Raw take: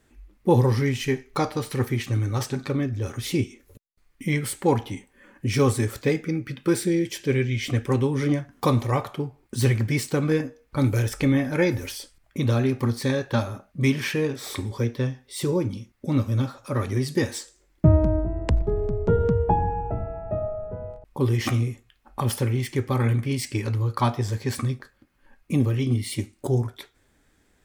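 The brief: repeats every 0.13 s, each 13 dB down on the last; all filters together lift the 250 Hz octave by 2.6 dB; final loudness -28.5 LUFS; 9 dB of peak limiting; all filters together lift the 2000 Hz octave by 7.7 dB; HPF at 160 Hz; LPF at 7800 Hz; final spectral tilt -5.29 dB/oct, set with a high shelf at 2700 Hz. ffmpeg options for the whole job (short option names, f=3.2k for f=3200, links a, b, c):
-af "highpass=160,lowpass=7.8k,equalizer=f=250:t=o:g=4,equalizer=f=2k:t=o:g=7.5,highshelf=f=2.7k:g=3.5,alimiter=limit=-15dB:level=0:latency=1,aecho=1:1:130|260|390:0.224|0.0493|0.0108,volume=-2dB"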